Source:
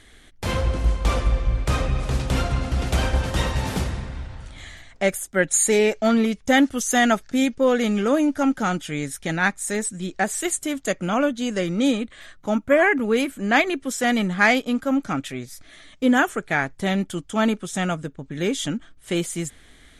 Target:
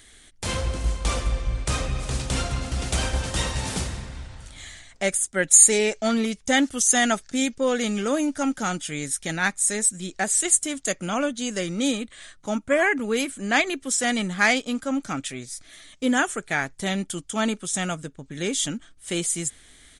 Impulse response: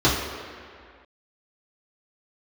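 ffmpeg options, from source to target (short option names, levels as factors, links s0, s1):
-af "aresample=22050,aresample=44100,aemphasis=mode=production:type=75kf,volume=0.596"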